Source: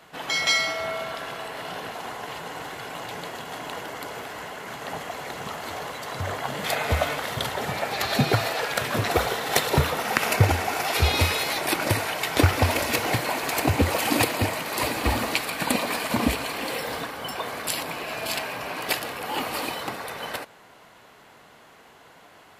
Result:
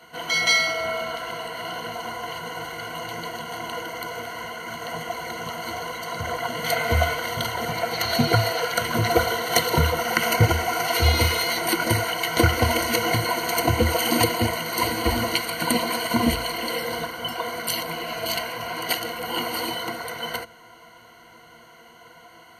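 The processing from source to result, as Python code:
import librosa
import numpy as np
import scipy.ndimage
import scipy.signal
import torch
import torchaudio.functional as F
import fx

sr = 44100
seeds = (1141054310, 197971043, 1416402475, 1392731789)

y = fx.ripple_eq(x, sr, per_octave=1.9, db=17)
y = y * librosa.db_to_amplitude(-1.5)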